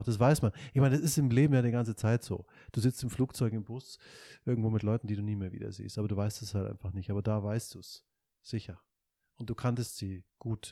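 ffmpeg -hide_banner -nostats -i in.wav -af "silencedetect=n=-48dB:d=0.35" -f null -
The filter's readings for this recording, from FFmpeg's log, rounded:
silence_start: 7.98
silence_end: 8.46 | silence_duration: 0.48
silence_start: 8.75
silence_end: 9.40 | silence_duration: 0.65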